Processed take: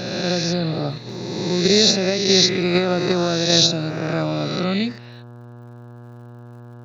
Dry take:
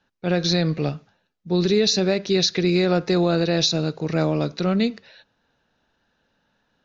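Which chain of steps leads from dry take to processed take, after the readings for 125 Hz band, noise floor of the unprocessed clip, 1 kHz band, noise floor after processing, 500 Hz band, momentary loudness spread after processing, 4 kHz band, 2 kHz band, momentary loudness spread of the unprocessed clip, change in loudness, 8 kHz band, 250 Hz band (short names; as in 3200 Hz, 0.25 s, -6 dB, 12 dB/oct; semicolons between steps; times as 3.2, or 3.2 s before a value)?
+0.5 dB, -71 dBFS, +2.5 dB, -40 dBFS, +1.0 dB, 12 LU, +6.5 dB, +4.0 dB, 6 LU, +2.5 dB, n/a, +0.5 dB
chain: spectral swells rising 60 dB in 1.53 s; HPF 45 Hz; spectral repair 0.34–1.11, 1600–4400 Hz both; notch 460 Hz, Q 12; buzz 120 Hz, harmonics 14, -38 dBFS -7 dB/oct; crackle 100/s -47 dBFS; in parallel at -1.5 dB: level quantiser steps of 17 dB; on the sum: gain -3 dB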